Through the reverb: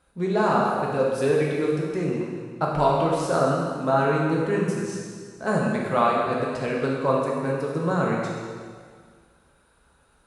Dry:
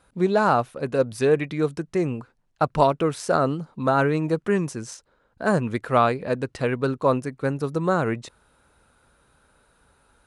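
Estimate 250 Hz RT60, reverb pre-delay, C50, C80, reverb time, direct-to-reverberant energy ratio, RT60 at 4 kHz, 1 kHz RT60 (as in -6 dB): 1.9 s, 4 ms, 0.0 dB, 1.5 dB, 1.9 s, -3.5 dB, 1.8 s, 1.9 s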